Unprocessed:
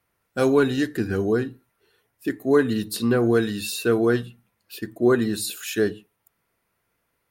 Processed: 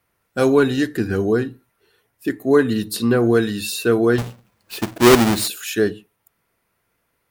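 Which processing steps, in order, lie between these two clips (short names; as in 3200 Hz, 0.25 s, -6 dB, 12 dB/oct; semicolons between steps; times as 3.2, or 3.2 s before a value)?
4.18–5.48 half-waves squared off; gain +3.5 dB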